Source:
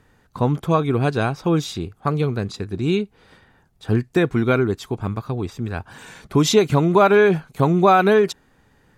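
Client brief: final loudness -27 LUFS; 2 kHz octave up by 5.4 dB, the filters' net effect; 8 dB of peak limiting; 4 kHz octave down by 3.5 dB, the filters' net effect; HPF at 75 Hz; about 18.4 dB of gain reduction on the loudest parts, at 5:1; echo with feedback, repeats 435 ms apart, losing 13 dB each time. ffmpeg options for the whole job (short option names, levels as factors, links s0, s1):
-af "highpass=75,equalizer=f=2000:t=o:g=9,equalizer=f=4000:t=o:g=-7,acompressor=threshold=0.0316:ratio=5,alimiter=limit=0.0708:level=0:latency=1,aecho=1:1:435|870|1305:0.224|0.0493|0.0108,volume=2.51"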